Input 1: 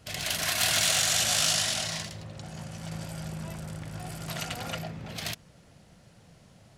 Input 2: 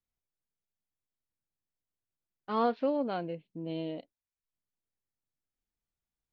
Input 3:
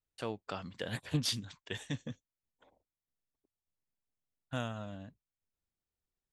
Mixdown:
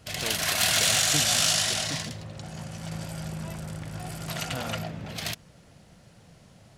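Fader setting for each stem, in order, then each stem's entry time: +2.0 dB, off, +0.5 dB; 0.00 s, off, 0.00 s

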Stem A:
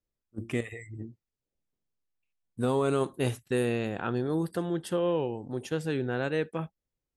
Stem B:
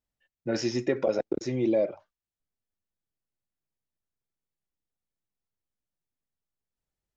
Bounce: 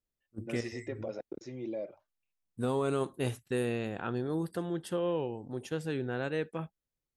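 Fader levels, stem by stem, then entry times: -4.0, -13.0 dB; 0.00, 0.00 s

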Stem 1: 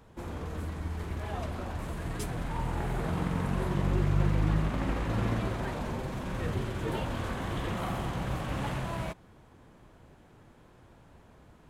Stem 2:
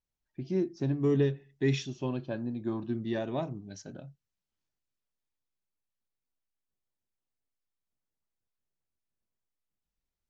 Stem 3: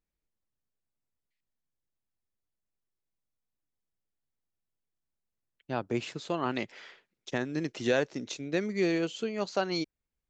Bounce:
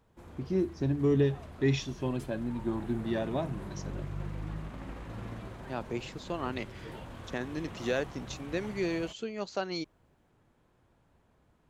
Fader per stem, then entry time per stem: -11.5, +0.5, -4.0 dB; 0.00, 0.00, 0.00 s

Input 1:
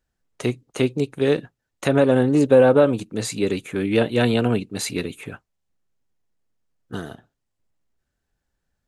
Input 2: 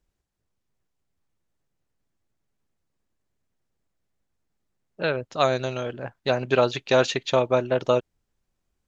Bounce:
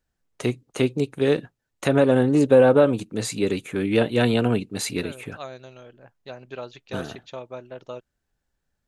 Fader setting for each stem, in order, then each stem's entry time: -1.0, -15.5 dB; 0.00, 0.00 s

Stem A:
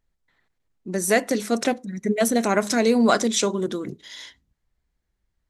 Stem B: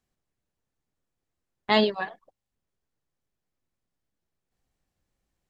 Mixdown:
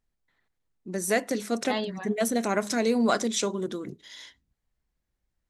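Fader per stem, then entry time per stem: -5.5, -9.5 dB; 0.00, 0.00 s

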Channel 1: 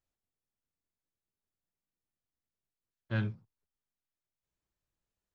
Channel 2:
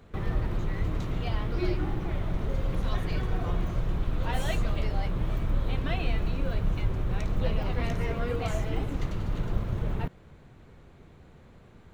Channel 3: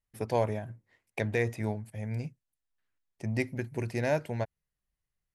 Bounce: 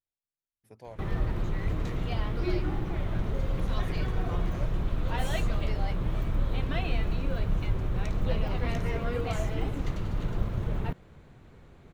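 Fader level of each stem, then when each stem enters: -11.0, -0.5, -18.0 dB; 0.00, 0.85, 0.50 s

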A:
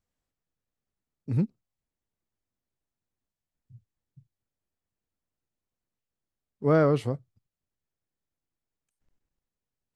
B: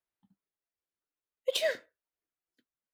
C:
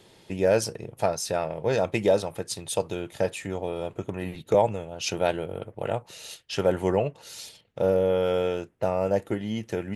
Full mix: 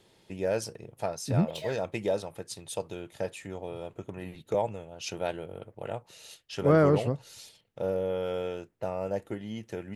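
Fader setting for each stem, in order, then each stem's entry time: 0.0, -10.0, -7.5 dB; 0.00, 0.00, 0.00 s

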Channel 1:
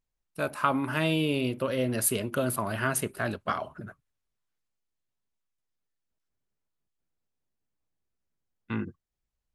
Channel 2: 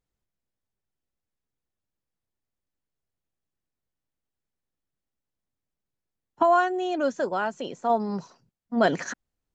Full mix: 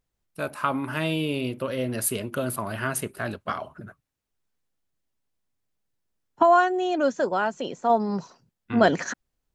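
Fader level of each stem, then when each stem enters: 0.0, +2.5 dB; 0.00, 0.00 s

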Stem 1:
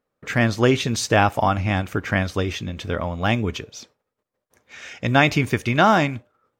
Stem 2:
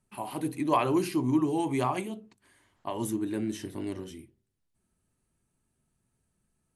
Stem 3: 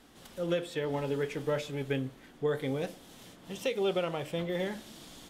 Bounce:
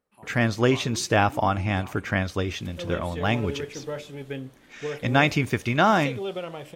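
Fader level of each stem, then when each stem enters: -3.5, -16.0, -2.0 dB; 0.00, 0.00, 2.40 s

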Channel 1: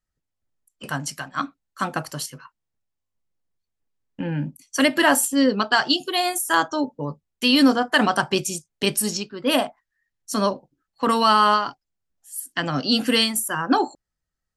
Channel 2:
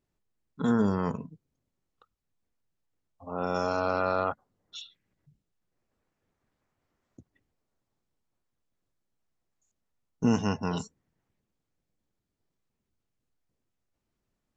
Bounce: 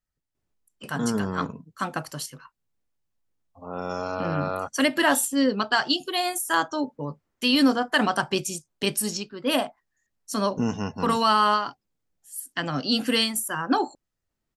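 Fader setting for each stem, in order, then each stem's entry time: -3.5, -1.5 dB; 0.00, 0.35 s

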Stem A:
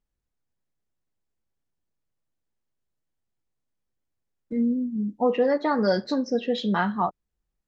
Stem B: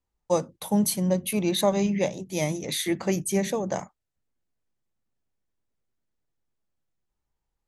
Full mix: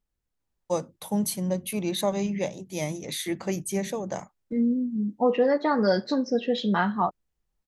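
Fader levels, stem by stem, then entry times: 0.0, -3.5 dB; 0.00, 0.40 s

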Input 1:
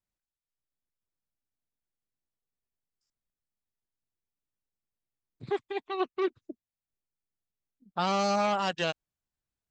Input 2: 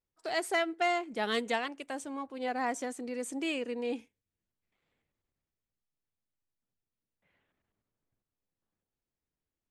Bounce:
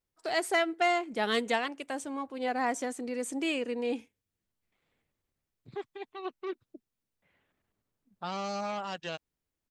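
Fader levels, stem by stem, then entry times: -8.0, +2.5 dB; 0.25, 0.00 s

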